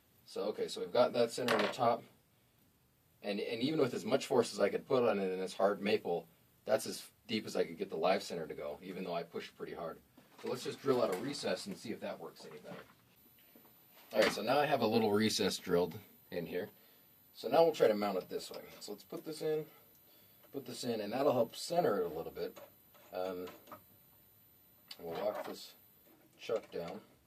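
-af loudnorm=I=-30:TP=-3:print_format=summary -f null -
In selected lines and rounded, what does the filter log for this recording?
Input Integrated:    -36.1 LUFS
Input True Peak:     -15.2 dBTP
Input LRA:            10.2 LU
Input Threshold:     -47.5 LUFS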